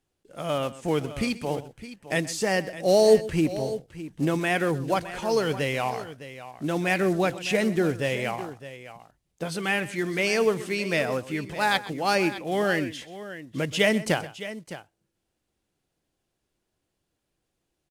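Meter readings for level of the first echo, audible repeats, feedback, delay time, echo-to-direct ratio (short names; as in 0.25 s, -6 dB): -17.0 dB, 2, no steady repeat, 0.127 s, -12.0 dB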